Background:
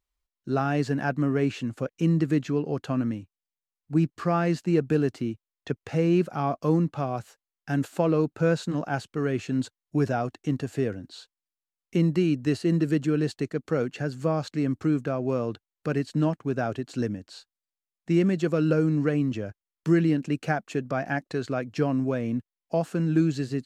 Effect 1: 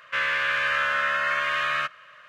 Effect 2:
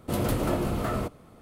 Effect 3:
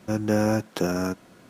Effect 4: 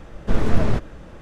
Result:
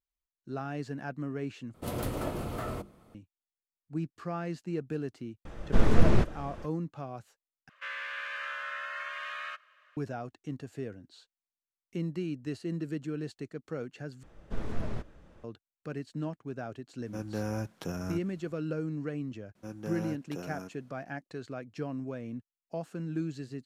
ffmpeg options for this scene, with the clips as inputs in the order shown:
-filter_complex "[4:a]asplit=2[a][b];[3:a]asplit=2[c][d];[0:a]volume=-11.5dB[e];[2:a]bandreject=f=50:t=h:w=6,bandreject=f=100:t=h:w=6,bandreject=f=150:t=h:w=6,bandreject=f=200:t=h:w=6,bandreject=f=250:t=h:w=6,bandreject=f=300:t=h:w=6,bandreject=f=350:t=h:w=6,bandreject=f=400:t=h:w=6[f];[1:a]highpass=510[g];[c]asubboost=boost=12:cutoff=140[h];[e]asplit=4[i][j][k][l];[i]atrim=end=1.744[m];[f]atrim=end=1.41,asetpts=PTS-STARTPTS,volume=-6.5dB[n];[j]atrim=start=3.146:end=7.694[o];[g]atrim=end=2.28,asetpts=PTS-STARTPTS,volume=-13.5dB[p];[k]atrim=start=9.966:end=14.234[q];[b]atrim=end=1.21,asetpts=PTS-STARTPTS,volume=-15.5dB[r];[l]atrim=start=15.436[s];[a]atrim=end=1.21,asetpts=PTS-STARTPTS,volume=-3dB,afade=t=in:d=0.004:c=hsin,afade=t=out:st=1.206:d=0.004:c=hsin,adelay=240345S[t];[h]atrim=end=1.49,asetpts=PTS-STARTPTS,volume=-12dB,afade=t=in:d=0.004:c=hsin,afade=t=out:st=1.486:d=0.004:c=hsin,adelay=17050[u];[d]atrim=end=1.49,asetpts=PTS-STARTPTS,volume=-16.5dB,afade=t=in:d=0.004:c=hsin,afade=t=out:st=1.486:d=0.004:c=hsin,adelay=19550[v];[m][n]acrossfade=d=0.004:c1=hsin:c2=hsin[w];[w][o]acrossfade=d=0.004:c1=hsin:c2=hsin[x];[x][p]acrossfade=d=0.004:c1=hsin:c2=hsin[y];[y][q]acrossfade=d=0.004:c1=hsin:c2=hsin[z];[z][r]acrossfade=d=0.004:c1=hsin:c2=hsin[aa];[aa][s]acrossfade=d=0.004:c1=hsin:c2=hsin[ab];[ab][t][u][v]amix=inputs=4:normalize=0"

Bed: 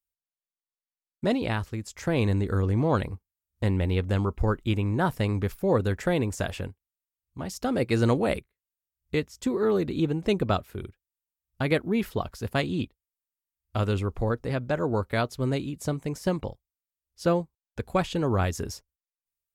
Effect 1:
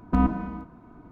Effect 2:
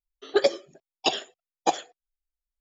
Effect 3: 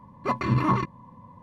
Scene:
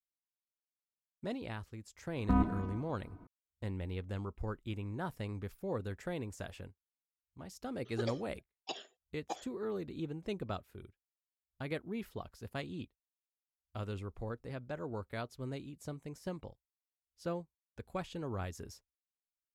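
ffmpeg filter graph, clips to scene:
-filter_complex "[0:a]volume=-14.5dB[a];[1:a]atrim=end=1.11,asetpts=PTS-STARTPTS,volume=-7.5dB,afade=t=in:d=0.004:c=hsin,afade=t=out:st=1.106:d=0.004:c=hsin,adelay=2160[b];[2:a]atrim=end=2.6,asetpts=PTS-STARTPTS,volume=-17.5dB,afade=t=in:d=0.004:c=hsin,afade=t=out:st=2.596:d=0.004:c=hsin,adelay=7630[c];[a][b][c]amix=inputs=3:normalize=0"

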